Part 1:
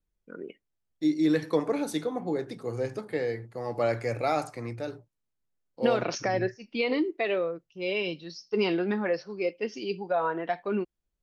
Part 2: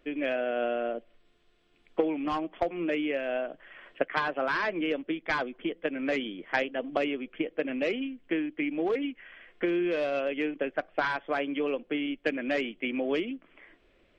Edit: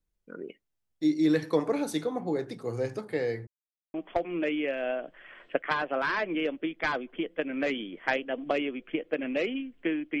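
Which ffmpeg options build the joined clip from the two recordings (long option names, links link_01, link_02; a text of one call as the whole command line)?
ffmpeg -i cue0.wav -i cue1.wav -filter_complex "[0:a]apad=whole_dur=10.2,atrim=end=10.2,asplit=2[link_01][link_02];[link_01]atrim=end=3.47,asetpts=PTS-STARTPTS,afade=type=out:start_time=3.466:duration=0.004:curve=hsin[link_03];[link_02]atrim=start=3.47:end=3.94,asetpts=PTS-STARTPTS,volume=0[link_04];[1:a]atrim=start=2.4:end=8.66,asetpts=PTS-STARTPTS,afade=type=in:duration=0.004:curve=hsin[link_05];[link_03][link_04][link_05]concat=n=3:v=0:a=1" out.wav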